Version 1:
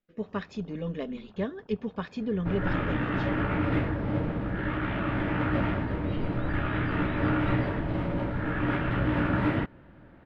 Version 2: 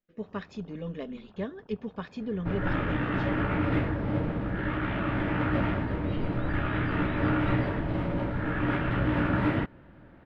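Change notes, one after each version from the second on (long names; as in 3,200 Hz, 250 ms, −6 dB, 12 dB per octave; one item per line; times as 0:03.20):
speech −3.0 dB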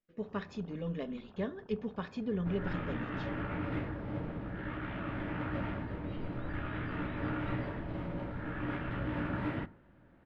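speech −3.5 dB
second sound −11.0 dB
reverb: on, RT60 0.55 s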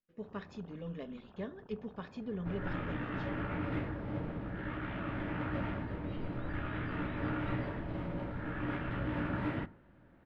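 speech −5.0 dB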